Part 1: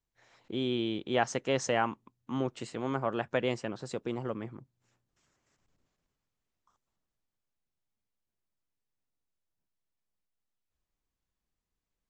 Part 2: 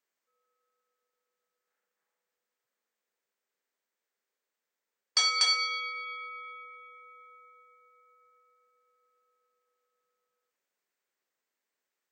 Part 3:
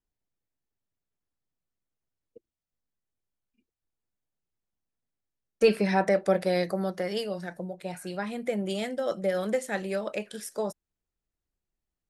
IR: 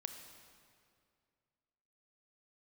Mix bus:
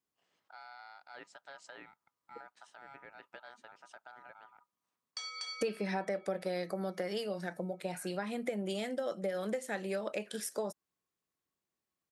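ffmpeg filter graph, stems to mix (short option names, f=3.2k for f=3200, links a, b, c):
-filter_complex "[0:a]acompressor=threshold=-34dB:ratio=3,aeval=exprs='val(0)*sin(2*PI*1100*n/s)':c=same,volume=-12.5dB[a];[1:a]acompressor=threshold=-25dB:ratio=3,volume=-14dB[b];[2:a]volume=0.5dB[c];[a][b][c]amix=inputs=3:normalize=0,highpass=160,acompressor=threshold=-33dB:ratio=5"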